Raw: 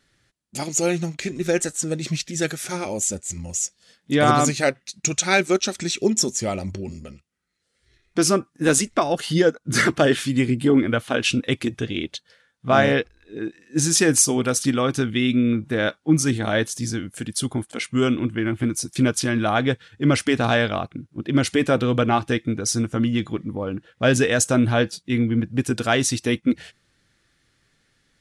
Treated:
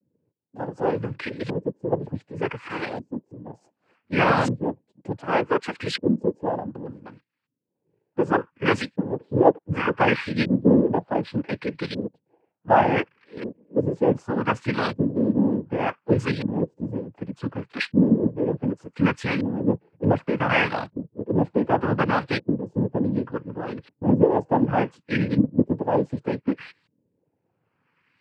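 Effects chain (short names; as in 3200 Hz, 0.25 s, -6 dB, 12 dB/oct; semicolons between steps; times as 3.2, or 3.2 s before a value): LFO low-pass saw up 0.67 Hz 220–3100 Hz; noise vocoder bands 8; gain -3.5 dB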